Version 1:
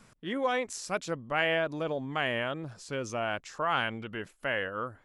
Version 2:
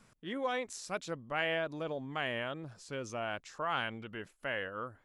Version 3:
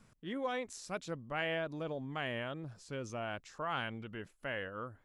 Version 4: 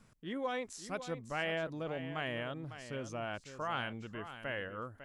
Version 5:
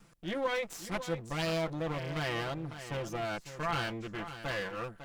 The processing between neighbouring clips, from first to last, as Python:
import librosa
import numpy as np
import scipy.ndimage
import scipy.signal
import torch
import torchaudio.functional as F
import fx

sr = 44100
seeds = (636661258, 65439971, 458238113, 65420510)

y1 = fx.dynamic_eq(x, sr, hz=3800.0, q=5.0, threshold_db=-54.0, ratio=4.0, max_db=4)
y1 = y1 * librosa.db_to_amplitude(-5.5)
y2 = fx.low_shelf(y1, sr, hz=270.0, db=6.5)
y2 = y2 * librosa.db_to_amplitude(-3.5)
y3 = y2 + 10.0 ** (-11.5 / 20.0) * np.pad(y2, (int(552 * sr / 1000.0), 0))[:len(y2)]
y4 = fx.lower_of_two(y3, sr, delay_ms=5.9)
y4 = y4 * librosa.db_to_amplitude(5.0)